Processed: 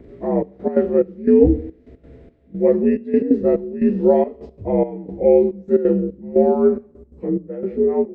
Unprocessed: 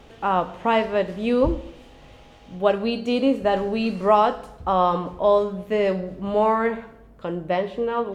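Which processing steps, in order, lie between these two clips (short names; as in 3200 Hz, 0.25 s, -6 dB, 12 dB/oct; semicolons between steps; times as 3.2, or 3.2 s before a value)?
inharmonic rescaling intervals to 83%; step gate "xxxxx..x.xxx..." 177 bpm -12 dB; resonant low shelf 610 Hz +14 dB, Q 1.5; gain -6.5 dB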